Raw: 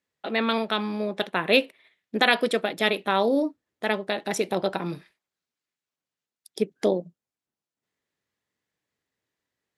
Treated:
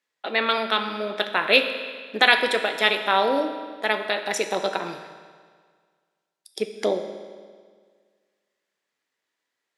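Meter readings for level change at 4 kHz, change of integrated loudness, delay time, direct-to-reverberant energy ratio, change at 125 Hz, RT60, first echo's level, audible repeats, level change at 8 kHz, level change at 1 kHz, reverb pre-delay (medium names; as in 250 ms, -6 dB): +5.0 dB, +2.5 dB, no echo, 7.0 dB, -7.5 dB, 1.8 s, no echo, no echo, +3.0 dB, +4.0 dB, 9 ms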